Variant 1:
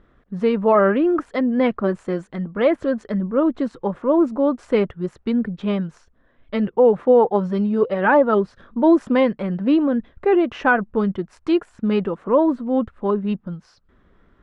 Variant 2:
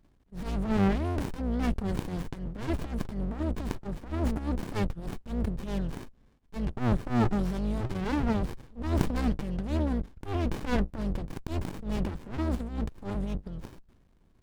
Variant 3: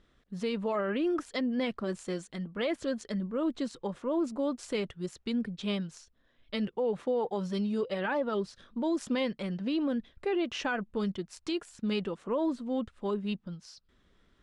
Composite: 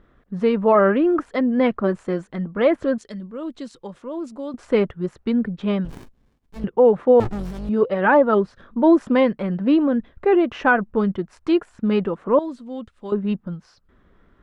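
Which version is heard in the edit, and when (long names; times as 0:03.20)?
1
0:02.98–0:04.54: punch in from 3
0:05.85–0:06.64: punch in from 2
0:07.20–0:07.69: punch in from 2
0:12.39–0:13.12: punch in from 3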